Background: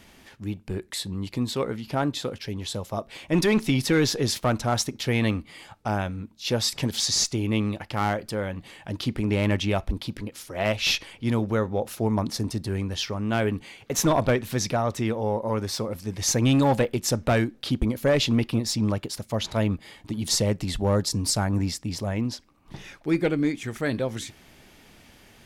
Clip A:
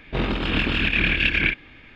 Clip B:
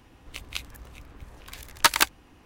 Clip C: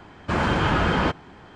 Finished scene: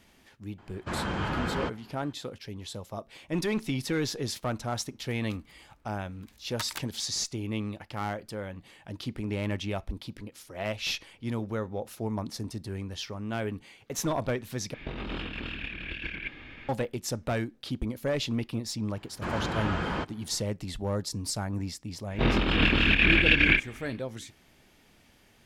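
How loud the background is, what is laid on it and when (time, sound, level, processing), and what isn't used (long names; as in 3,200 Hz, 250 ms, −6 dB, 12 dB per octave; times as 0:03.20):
background −8 dB
0:00.58: mix in C −10 dB
0:04.75: mix in B −18 dB
0:14.74: overwrite with A −7 dB + compressor whose output falls as the input rises −30 dBFS
0:18.93: mix in C −9.5 dB
0:22.06: mix in A −0.5 dB, fades 0.10 s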